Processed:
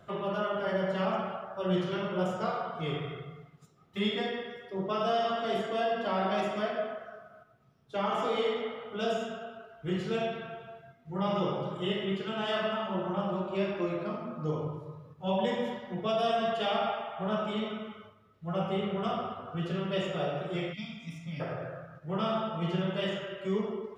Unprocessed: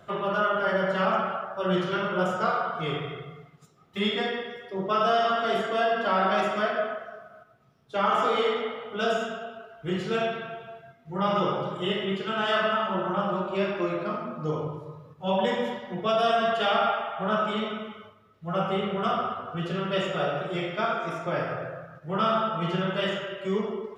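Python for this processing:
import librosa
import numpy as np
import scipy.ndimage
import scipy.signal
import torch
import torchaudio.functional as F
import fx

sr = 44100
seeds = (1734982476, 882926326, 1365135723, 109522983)

y = fx.dynamic_eq(x, sr, hz=1400.0, q=2.6, threshold_db=-41.0, ratio=4.0, max_db=-7)
y = fx.spec_box(y, sr, start_s=20.73, length_s=0.67, low_hz=280.0, high_hz=1900.0, gain_db=-24)
y = fx.low_shelf(y, sr, hz=260.0, db=4.5)
y = y * 10.0 ** (-5.0 / 20.0)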